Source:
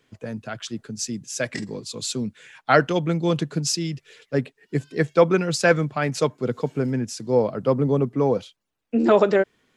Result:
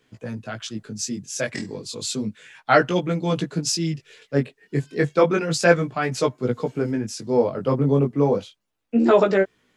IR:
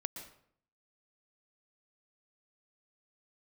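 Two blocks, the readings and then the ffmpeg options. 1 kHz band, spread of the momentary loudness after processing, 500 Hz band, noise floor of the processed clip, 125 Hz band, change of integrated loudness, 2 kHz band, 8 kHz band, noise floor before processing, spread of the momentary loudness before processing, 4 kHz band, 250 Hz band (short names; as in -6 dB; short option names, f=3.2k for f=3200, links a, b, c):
+1.0 dB, 14 LU, +0.5 dB, -70 dBFS, +0.5 dB, +0.5 dB, +0.5 dB, +0.5 dB, -74 dBFS, 14 LU, +0.5 dB, +1.0 dB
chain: -af "flanger=delay=16:depth=5.8:speed=0.32,volume=3.5dB"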